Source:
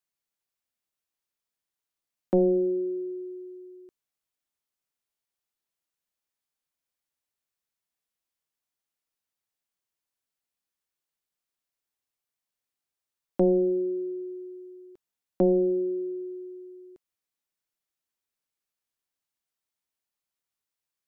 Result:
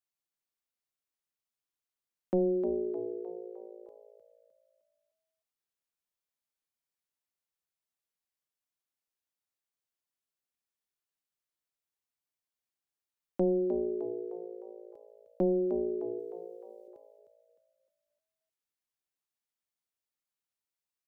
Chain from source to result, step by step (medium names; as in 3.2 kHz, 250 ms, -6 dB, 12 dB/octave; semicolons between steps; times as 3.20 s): 16.19–16.88 s: tilt shelf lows -9 dB, about 940 Hz; frequency-shifting echo 306 ms, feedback 45%, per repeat +56 Hz, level -9 dB; trim -6 dB